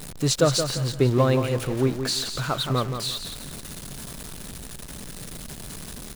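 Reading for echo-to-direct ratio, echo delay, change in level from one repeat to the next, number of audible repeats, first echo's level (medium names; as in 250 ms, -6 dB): -7.5 dB, 173 ms, -11.0 dB, 3, -8.0 dB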